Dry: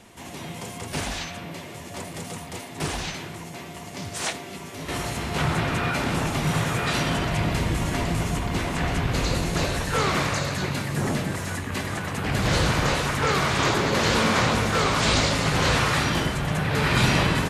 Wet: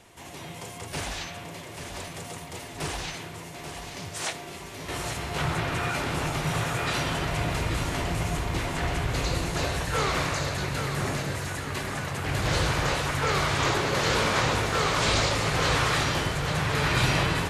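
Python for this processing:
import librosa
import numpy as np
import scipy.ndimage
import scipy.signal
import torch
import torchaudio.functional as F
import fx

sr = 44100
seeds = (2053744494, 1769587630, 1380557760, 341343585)

y = fx.peak_eq(x, sr, hz=220.0, db=-8.0, octaves=0.54)
y = fx.echo_feedback(y, sr, ms=836, feedback_pct=47, wet_db=-8.0)
y = y * librosa.db_to_amplitude(-3.0)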